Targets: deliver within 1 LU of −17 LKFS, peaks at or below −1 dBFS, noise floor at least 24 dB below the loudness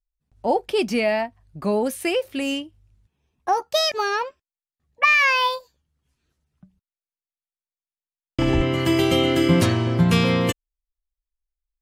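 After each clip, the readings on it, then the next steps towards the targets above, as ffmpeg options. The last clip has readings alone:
integrated loudness −21.0 LKFS; sample peak −5.5 dBFS; target loudness −17.0 LKFS
→ -af "volume=4dB"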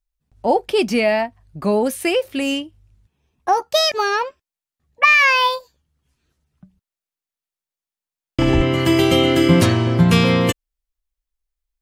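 integrated loudness −17.0 LKFS; sample peak −1.5 dBFS; background noise floor −91 dBFS

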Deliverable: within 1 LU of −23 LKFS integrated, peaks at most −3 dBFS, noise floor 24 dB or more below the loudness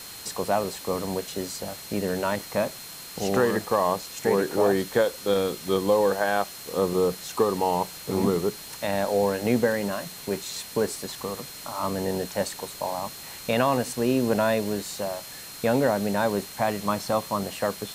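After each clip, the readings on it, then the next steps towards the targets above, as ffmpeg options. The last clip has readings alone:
interfering tone 4,200 Hz; level of the tone −45 dBFS; background noise floor −41 dBFS; target noise floor −51 dBFS; integrated loudness −26.5 LKFS; sample peak −9.5 dBFS; target loudness −23.0 LKFS
→ -af "bandreject=frequency=4200:width=30"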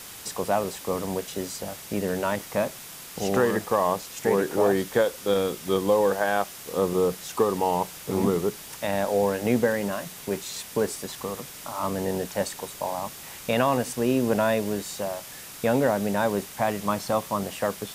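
interfering tone none found; background noise floor −42 dBFS; target noise floor −51 dBFS
→ -af "afftdn=noise_reduction=9:noise_floor=-42"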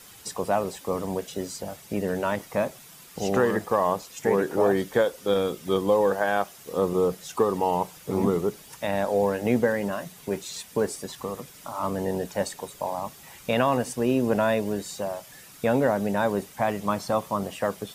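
background noise floor −48 dBFS; target noise floor −51 dBFS
→ -af "afftdn=noise_reduction=6:noise_floor=-48"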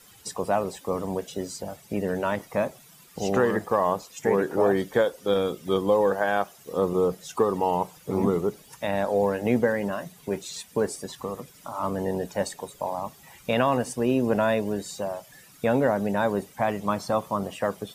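background noise floor −53 dBFS; integrated loudness −26.5 LKFS; sample peak −9.5 dBFS; target loudness −23.0 LKFS
→ -af "volume=3.5dB"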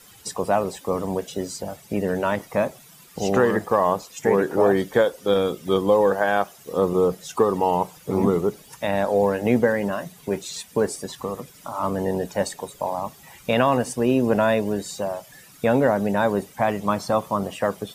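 integrated loudness −23.0 LKFS; sample peak −6.0 dBFS; background noise floor −49 dBFS

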